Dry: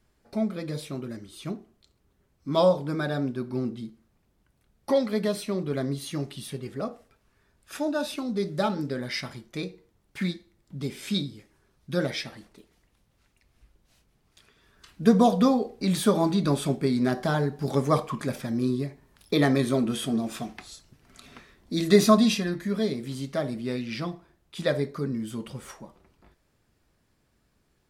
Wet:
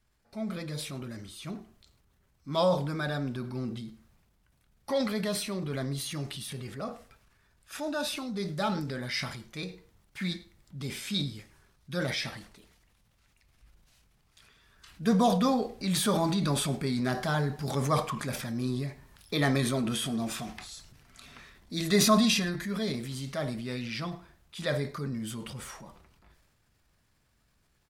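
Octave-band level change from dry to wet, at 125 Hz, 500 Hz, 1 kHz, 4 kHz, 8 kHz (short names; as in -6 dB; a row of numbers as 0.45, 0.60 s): -2.0, -6.0, -2.5, +1.0, +3.0 dB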